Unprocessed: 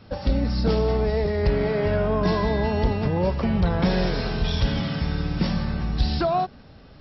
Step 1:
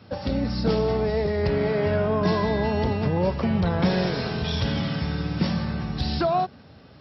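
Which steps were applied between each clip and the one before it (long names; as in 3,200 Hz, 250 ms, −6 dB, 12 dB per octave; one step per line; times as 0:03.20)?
high-pass filter 75 Hz 24 dB per octave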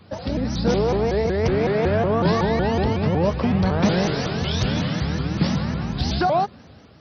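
automatic gain control gain up to 3 dB
pitch modulation by a square or saw wave saw up 5.4 Hz, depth 250 cents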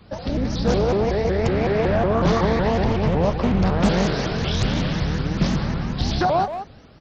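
sub-octave generator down 2 octaves, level −6 dB
far-end echo of a speakerphone 180 ms, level −9 dB
highs frequency-modulated by the lows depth 0.47 ms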